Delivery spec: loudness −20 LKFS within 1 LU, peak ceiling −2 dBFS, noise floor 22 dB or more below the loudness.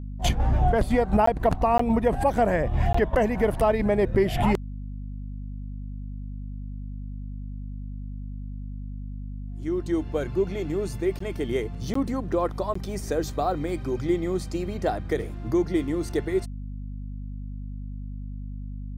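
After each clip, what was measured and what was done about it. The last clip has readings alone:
number of dropouts 6; longest dropout 14 ms; mains hum 50 Hz; hum harmonics up to 250 Hz; level of the hum −32 dBFS; integrated loudness −25.5 LKFS; sample peak −10.0 dBFS; target loudness −20.0 LKFS
→ repair the gap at 0:01.26/0:01.78/0:02.93/0:11.19/0:11.94/0:12.74, 14 ms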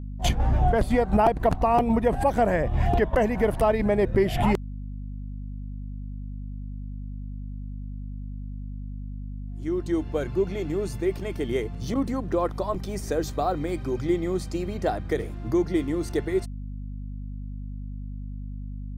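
number of dropouts 0; mains hum 50 Hz; hum harmonics up to 250 Hz; level of the hum −32 dBFS
→ hum removal 50 Hz, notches 5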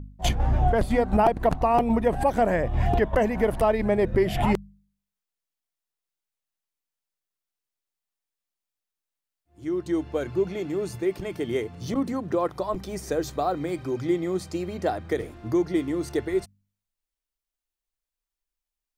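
mains hum none found; integrated loudness −25.5 LKFS; sample peak −9.0 dBFS; target loudness −20.0 LKFS
→ level +5.5 dB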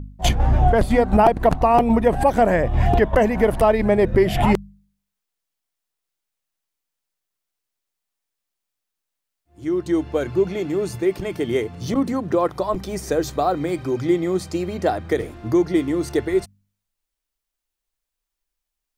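integrated loudness −20.0 LKFS; sample peak −3.5 dBFS; background noise floor −83 dBFS

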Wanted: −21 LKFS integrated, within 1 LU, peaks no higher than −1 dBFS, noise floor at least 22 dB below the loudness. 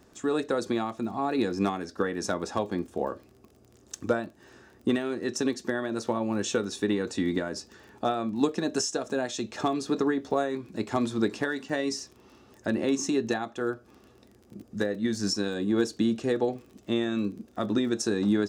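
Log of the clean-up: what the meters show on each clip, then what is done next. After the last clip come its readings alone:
crackle rate 23 per second; integrated loudness −29.5 LKFS; sample peak −12.0 dBFS; target loudness −21.0 LKFS
→ click removal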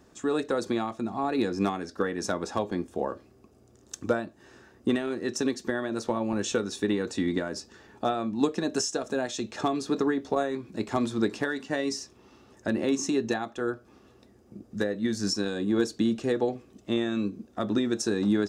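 crackle rate 0 per second; integrated loudness −29.5 LKFS; sample peak −12.0 dBFS; target loudness −21.0 LKFS
→ level +8.5 dB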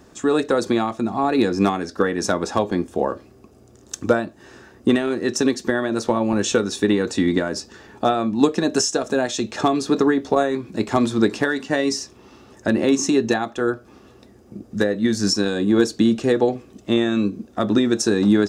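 integrated loudness −21.0 LKFS; sample peak −3.5 dBFS; background noise floor −50 dBFS

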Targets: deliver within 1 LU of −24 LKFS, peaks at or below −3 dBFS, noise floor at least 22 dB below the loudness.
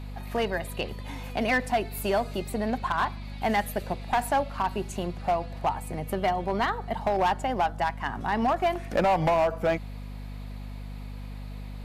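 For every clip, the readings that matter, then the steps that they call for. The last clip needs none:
share of clipped samples 1.3%; peaks flattened at −18.5 dBFS; mains hum 50 Hz; hum harmonics up to 250 Hz; level of the hum −35 dBFS; integrated loudness −28.0 LKFS; sample peak −18.5 dBFS; target loudness −24.0 LKFS
→ clipped peaks rebuilt −18.5 dBFS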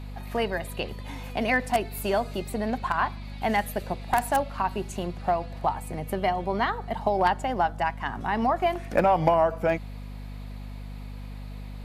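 share of clipped samples 0.0%; mains hum 50 Hz; hum harmonics up to 250 Hz; level of the hum −35 dBFS
→ hum removal 50 Hz, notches 5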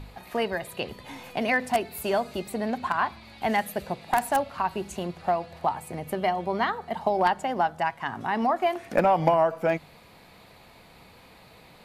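mains hum none found; integrated loudness −27.0 LKFS; sample peak −8.5 dBFS; target loudness −24.0 LKFS
→ level +3 dB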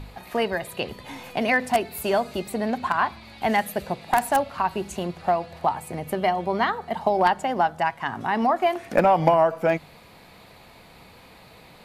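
integrated loudness −24.0 LKFS; sample peak −5.5 dBFS; background noise floor −50 dBFS

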